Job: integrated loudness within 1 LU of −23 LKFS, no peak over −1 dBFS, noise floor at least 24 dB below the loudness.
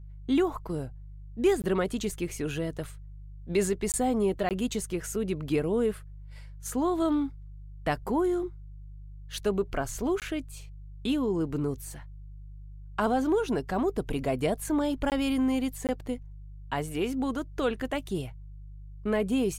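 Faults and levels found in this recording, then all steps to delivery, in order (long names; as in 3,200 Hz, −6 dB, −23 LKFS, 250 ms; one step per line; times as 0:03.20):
number of dropouts 6; longest dropout 18 ms; mains hum 50 Hz; hum harmonics up to 150 Hz; level of the hum −41 dBFS; integrated loudness −29.5 LKFS; sample peak −14.0 dBFS; target loudness −23.0 LKFS
→ repair the gap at 0:01.62/0:03.92/0:04.49/0:10.20/0:15.10/0:15.87, 18 ms
hum removal 50 Hz, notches 3
level +6.5 dB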